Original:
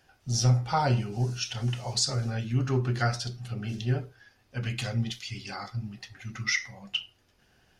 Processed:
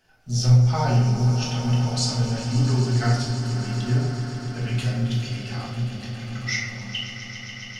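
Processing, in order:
floating-point word with a short mantissa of 6 bits
echo that builds up and dies away 135 ms, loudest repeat 5, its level −13.5 dB
rectangular room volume 230 cubic metres, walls mixed, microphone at 1.5 metres
level −3 dB

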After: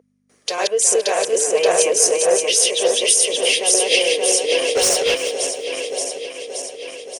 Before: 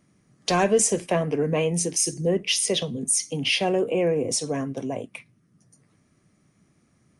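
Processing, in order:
feedback delay that plays each chunk backwards 288 ms, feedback 77%, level −0.5 dB
noise gate with hold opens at −51 dBFS
tilt shelving filter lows −7.5 dB, about 1,100 Hz
in parallel at −0.5 dB: downward compressor, threshold −33 dBFS, peak gain reduction 22.5 dB
on the sum: mains hum 50 Hz, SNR 21 dB
high-pass with resonance 470 Hz, resonance Q 4.9
0:04.75–0:05.15: mid-hump overdrive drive 17 dB, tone 5,300 Hz, clips at −3 dBFS
harmonic and percussive parts rebalanced percussive +4 dB
on a send: repeating echo 342 ms, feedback 24%, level −13 dB
on the sum: amplitude modulation by smooth noise, depth 55%
level −3.5 dB

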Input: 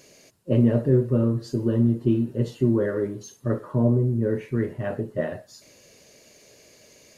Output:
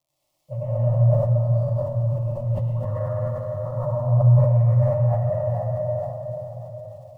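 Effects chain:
elliptic band-stop filter 200–550 Hz, stop band 40 dB
noise gate −47 dBFS, range −20 dB
Chebyshev low-pass filter 1,400 Hz, order 3
parametric band 200 Hz −15 dB 0.58 octaves
0:00.88–0:03.64: compressor whose output falls as the input rises −32 dBFS, ratio −0.5
surface crackle 130 per second −56 dBFS
phaser with its sweep stopped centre 310 Hz, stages 8
feedback echo with a band-pass in the loop 483 ms, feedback 42%, band-pass 520 Hz, level −5.5 dB
convolution reverb RT60 4.0 s, pre-delay 82 ms, DRR −11.5 dB
level that may fall only so fast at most 40 dB per second
level −3 dB

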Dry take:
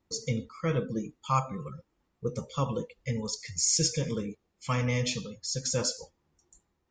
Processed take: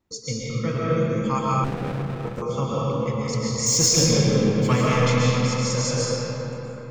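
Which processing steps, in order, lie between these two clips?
0:03.66–0:04.86: leveller curve on the samples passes 2
comb and all-pass reverb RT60 4.4 s, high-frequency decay 0.5×, pre-delay 90 ms, DRR −7 dB
0:01.64–0:02.42: windowed peak hold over 33 samples

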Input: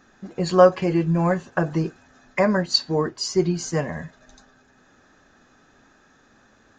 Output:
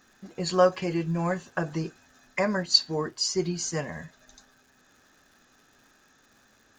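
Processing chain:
high-shelf EQ 2,300 Hz +9.5 dB
surface crackle 210 per second −44 dBFS
level −7.5 dB

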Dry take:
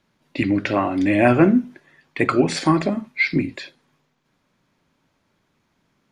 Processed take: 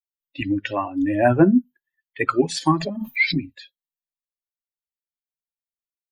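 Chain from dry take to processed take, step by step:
spectral dynamics exaggerated over time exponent 2
0:00.92–0:01.63: flat-topped bell 3,400 Hz −10 dB
0:02.67–0:03.54: background raised ahead of every attack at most 55 dB per second
level +2 dB

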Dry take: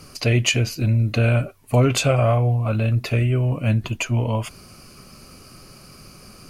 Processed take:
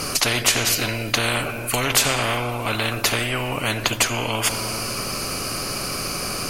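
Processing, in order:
rectangular room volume 2,700 cubic metres, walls mixed, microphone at 0.35 metres
every bin compressed towards the loudest bin 4 to 1
level +4.5 dB

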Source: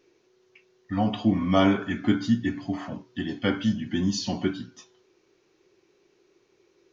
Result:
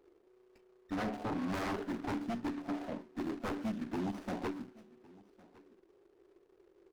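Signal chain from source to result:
running median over 41 samples
high-pass filter 360 Hz 12 dB per octave
high-shelf EQ 5,800 Hz −7 dB
in parallel at +1 dB: downward compressor, threshold −37 dBFS, peak gain reduction 15.5 dB
on the sum: wave folding −26.5 dBFS
on a send: single-tap delay 1,108 ms −23 dB
on the sum: windowed peak hold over 9 samples
level −3.5 dB

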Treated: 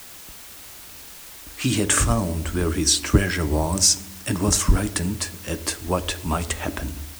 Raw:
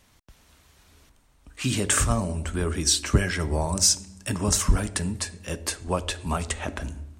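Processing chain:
parametric band 310 Hz +8.5 dB 0.22 octaves
in parallel at −4 dB: bit-depth reduction 6 bits, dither triangular
on the sum: level −1.5 dB

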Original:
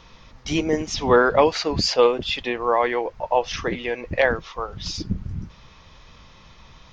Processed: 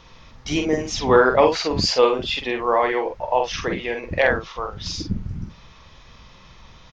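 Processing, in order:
double-tracking delay 47 ms −5 dB

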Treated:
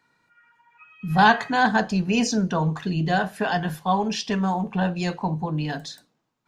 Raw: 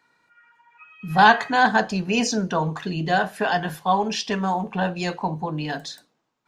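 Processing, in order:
bass and treble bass +7 dB, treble +1 dB
level −2.5 dB

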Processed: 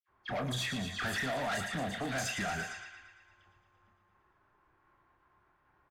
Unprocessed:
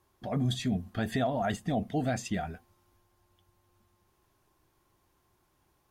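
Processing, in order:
high-shelf EQ 3,400 Hz +7 dB
in parallel at −4 dB: hard clipping −31 dBFS, distortion −8 dB
on the sum: downward compressor 6 to 1, threshold −33 dBFS, peak gain reduction 10 dB
parametric band 1,600 Hz +13 dB 1.8 octaves
double-tracking delay 30 ms −7 dB
downward expander −52 dBFS
all-pass dispersion lows, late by 76 ms, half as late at 2,000 Hz
on a send: feedback echo with a high-pass in the loop 114 ms, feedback 80%, high-pass 1,200 Hz, level −8 dB
on the sum: soft clipping −30.5 dBFS, distortion −10 dB
low-pass that shuts in the quiet parts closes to 1,400 Hz, open at −33.5 dBFS

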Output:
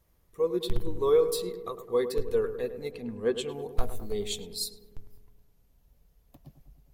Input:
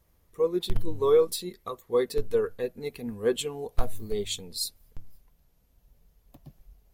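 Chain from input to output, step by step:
0:02.91–0:03.49: high-frequency loss of the air 58 metres
feedback echo with a low-pass in the loop 104 ms, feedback 68%, low-pass 1,500 Hz, level −10 dB
level −2 dB

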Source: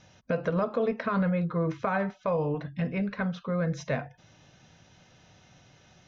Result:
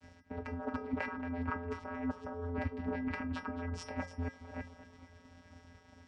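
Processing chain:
delay that plays each chunk backwards 329 ms, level −12 dB
reverb reduction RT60 0.64 s
downward expander −56 dBFS
compressor whose output falls as the input rises −36 dBFS, ratio −1
channel vocoder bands 8, square 86.1 Hz
tuned comb filter 180 Hz, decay 0.28 s, harmonics odd, mix 90%
on a send: feedback echo with a low-pass in the loop 226 ms, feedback 56%, low-pass 4,700 Hz, level −12 dB
on the sum: level +16 dB

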